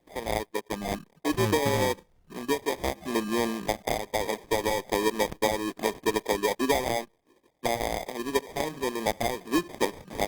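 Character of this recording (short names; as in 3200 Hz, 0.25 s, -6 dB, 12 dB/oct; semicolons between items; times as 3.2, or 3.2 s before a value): aliases and images of a low sample rate 1400 Hz, jitter 0%; Opus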